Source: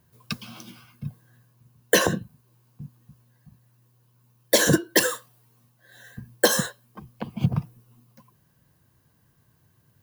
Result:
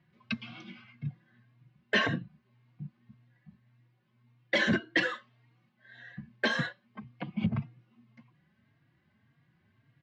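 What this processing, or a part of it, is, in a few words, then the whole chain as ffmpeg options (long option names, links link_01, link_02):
barber-pole flanger into a guitar amplifier: -filter_complex "[0:a]asplit=2[link_01][link_02];[link_02]adelay=3.7,afreqshift=1.8[link_03];[link_01][link_03]amix=inputs=2:normalize=1,asoftclip=type=tanh:threshold=-18.5dB,highpass=110,equalizer=frequency=220:width_type=q:width=4:gain=4,equalizer=frequency=470:width_type=q:width=4:gain=-9,equalizer=frequency=970:width_type=q:width=4:gain=-5,equalizer=frequency=2100:width_type=q:width=4:gain=10,lowpass=frequency=3700:width=0.5412,lowpass=frequency=3700:width=1.3066"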